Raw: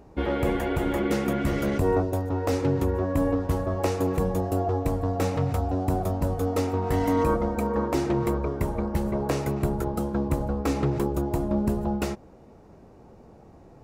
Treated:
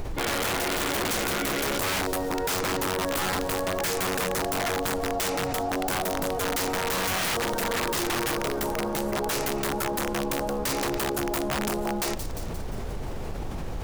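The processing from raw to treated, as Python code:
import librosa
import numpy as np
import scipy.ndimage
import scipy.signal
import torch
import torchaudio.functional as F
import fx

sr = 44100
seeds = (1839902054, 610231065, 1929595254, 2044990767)

y = scipy.signal.sosfilt(scipy.signal.butter(2, 310.0, 'highpass', fs=sr, output='sos'), x)
y = fx.high_shelf(y, sr, hz=2600.0, db=6.0)
y = fx.dmg_noise_colour(y, sr, seeds[0], colour='brown', level_db=-41.0)
y = (np.mod(10.0 ** (22.5 / 20.0) * y + 1.0, 2.0) - 1.0) / 10.0 ** (22.5 / 20.0)
y = fx.echo_wet_highpass(y, sr, ms=175, feedback_pct=59, hz=4000.0, wet_db=-17.5)
y = fx.env_flatten(y, sr, amount_pct=70)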